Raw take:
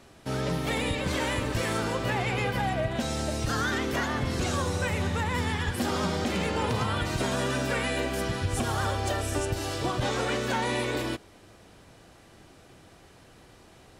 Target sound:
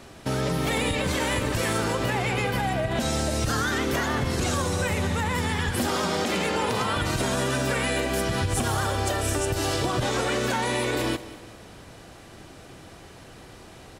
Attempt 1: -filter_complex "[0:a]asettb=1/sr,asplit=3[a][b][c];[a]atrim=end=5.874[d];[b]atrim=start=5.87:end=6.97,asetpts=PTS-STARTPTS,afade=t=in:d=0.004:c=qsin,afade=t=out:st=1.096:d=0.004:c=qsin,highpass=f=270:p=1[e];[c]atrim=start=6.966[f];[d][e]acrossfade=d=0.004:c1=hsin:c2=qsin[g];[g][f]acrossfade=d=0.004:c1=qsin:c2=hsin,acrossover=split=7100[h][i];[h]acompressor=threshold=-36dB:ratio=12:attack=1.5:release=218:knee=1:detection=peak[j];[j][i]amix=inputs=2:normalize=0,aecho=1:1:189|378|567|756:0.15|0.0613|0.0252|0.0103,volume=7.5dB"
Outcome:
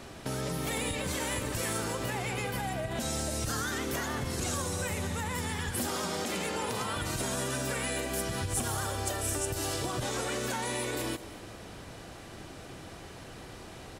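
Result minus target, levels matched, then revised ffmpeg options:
compressor: peak gain reduction +8 dB
-filter_complex "[0:a]asettb=1/sr,asplit=3[a][b][c];[a]atrim=end=5.874[d];[b]atrim=start=5.87:end=6.97,asetpts=PTS-STARTPTS,afade=t=in:d=0.004:c=qsin,afade=t=out:st=1.096:d=0.004:c=qsin,highpass=f=270:p=1[e];[c]atrim=start=6.966[f];[d][e]acrossfade=d=0.004:c1=hsin:c2=qsin[g];[g][f]acrossfade=d=0.004:c1=qsin:c2=hsin,acrossover=split=7100[h][i];[h]acompressor=threshold=-27dB:ratio=12:attack=1.5:release=218:knee=1:detection=peak[j];[j][i]amix=inputs=2:normalize=0,aecho=1:1:189|378|567|756:0.15|0.0613|0.0252|0.0103,volume=7.5dB"

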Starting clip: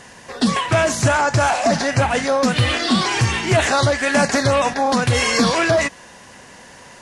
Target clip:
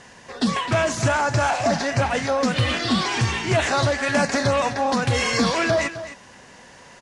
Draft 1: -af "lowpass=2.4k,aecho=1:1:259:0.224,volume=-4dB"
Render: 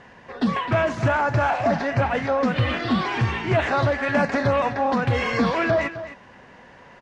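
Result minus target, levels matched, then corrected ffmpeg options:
8000 Hz band -16.0 dB
-af "lowpass=8.1k,aecho=1:1:259:0.224,volume=-4dB"

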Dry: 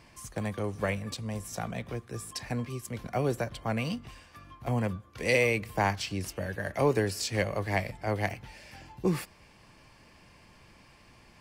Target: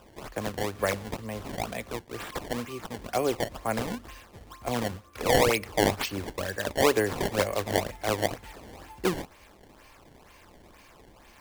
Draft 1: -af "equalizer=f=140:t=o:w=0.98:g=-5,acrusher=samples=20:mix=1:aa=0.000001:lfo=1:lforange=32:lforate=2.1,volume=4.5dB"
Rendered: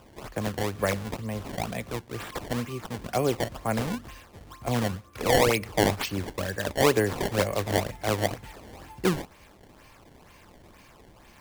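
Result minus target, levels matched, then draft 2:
125 Hz band +4.0 dB
-af "equalizer=f=140:t=o:w=0.98:g=-15.5,acrusher=samples=20:mix=1:aa=0.000001:lfo=1:lforange=32:lforate=2.1,volume=4.5dB"

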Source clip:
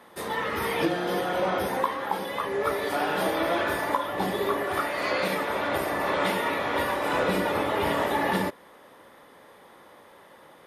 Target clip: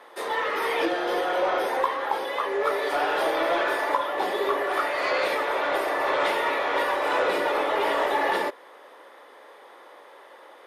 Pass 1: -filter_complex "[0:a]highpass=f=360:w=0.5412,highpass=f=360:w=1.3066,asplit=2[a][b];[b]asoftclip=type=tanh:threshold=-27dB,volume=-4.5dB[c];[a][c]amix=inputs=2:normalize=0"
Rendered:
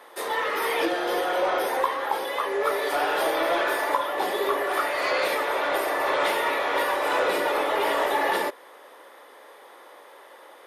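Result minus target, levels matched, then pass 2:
8000 Hz band +5.5 dB
-filter_complex "[0:a]highpass=f=360:w=0.5412,highpass=f=360:w=1.3066,highshelf=f=8.4k:g=-12,asplit=2[a][b];[b]asoftclip=type=tanh:threshold=-27dB,volume=-4.5dB[c];[a][c]amix=inputs=2:normalize=0"

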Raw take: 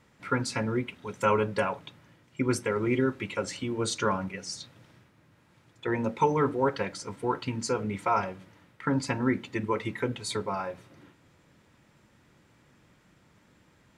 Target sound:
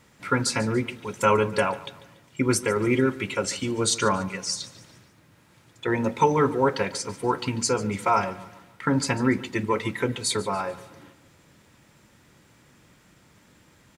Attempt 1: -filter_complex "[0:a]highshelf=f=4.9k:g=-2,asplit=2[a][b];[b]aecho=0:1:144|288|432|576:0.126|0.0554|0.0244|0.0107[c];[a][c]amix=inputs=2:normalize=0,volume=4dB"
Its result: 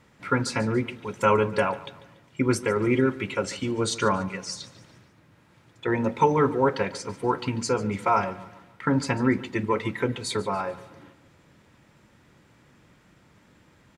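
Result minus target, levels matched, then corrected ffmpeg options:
8000 Hz band -6.5 dB
-filter_complex "[0:a]highshelf=f=4.9k:g=8.5,asplit=2[a][b];[b]aecho=0:1:144|288|432|576:0.126|0.0554|0.0244|0.0107[c];[a][c]amix=inputs=2:normalize=0,volume=4dB"

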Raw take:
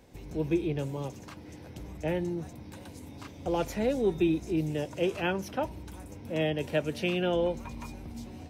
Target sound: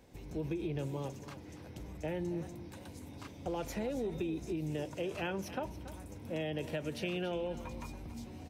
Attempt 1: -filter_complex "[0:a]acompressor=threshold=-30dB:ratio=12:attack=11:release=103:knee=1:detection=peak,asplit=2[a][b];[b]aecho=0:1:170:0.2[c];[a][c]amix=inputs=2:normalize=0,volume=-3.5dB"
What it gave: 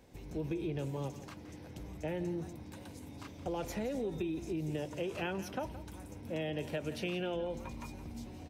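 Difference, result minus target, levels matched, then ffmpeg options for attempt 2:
echo 0.111 s early
-filter_complex "[0:a]acompressor=threshold=-30dB:ratio=12:attack=11:release=103:knee=1:detection=peak,asplit=2[a][b];[b]aecho=0:1:281:0.2[c];[a][c]amix=inputs=2:normalize=0,volume=-3.5dB"

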